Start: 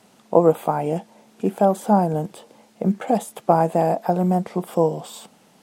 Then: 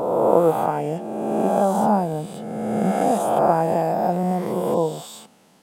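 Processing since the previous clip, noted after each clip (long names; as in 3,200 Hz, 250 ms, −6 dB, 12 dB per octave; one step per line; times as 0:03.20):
peak hold with a rise ahead of every peak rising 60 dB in 1.96 s
level −4 dB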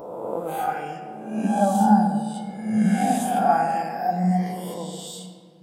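noise reduction from a noise print of the clip's start 16 dB
on a send at −3.5 dB: convolution reverb RT60 1.9 s, pre-delay 6 ms
on the sum: level +1.5 dB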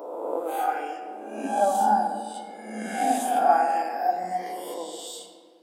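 elliptic high-pass filter 270 Hz, stop band 50 dB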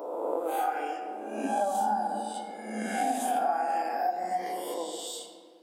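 mains-hum notches 60/120/180 Hz
downward compressor 5 to 1, threshold −25 dBFS, peak gain reduction 11 dB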